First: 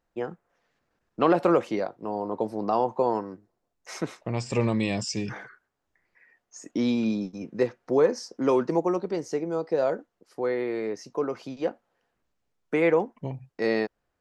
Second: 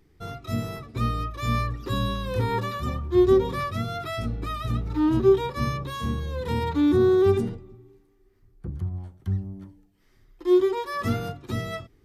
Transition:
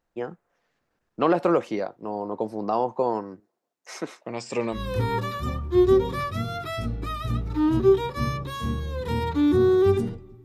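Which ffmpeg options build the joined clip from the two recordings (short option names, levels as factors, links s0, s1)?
-filter_complex "[0:a]asettb=1/sr,asplit=3[s0][s1][s2];[s0]atrim=end=3.404[s3];[s1]atrim=start=3.4:end=4.81,asetpts=PTS-STARTPTS,afade=t=in:d=0.004:c=qsin,afade=t=out:st=1.406:d=0.004:c=qsin,highpass=250[s4];[s2]atrim=start=4.806[s5];[s3][s4]acrossfade=d=0.004:c1=hsin:c2=qsin[s6];[s6][s5]acrossfade=d=0.004:c1=qsin:c2=hsin,apad=whole_dur=10.44,atrim=end=10.44,atrim=end=4.81,asetpts=PTS-STARTPTS[s7];[1:a]atrim=start=2.11:end=7.84,asetpts=PTS-STARTPTS[s8];[s7][s8]acrossfade=d=0.1:c1=tri:c2=tri"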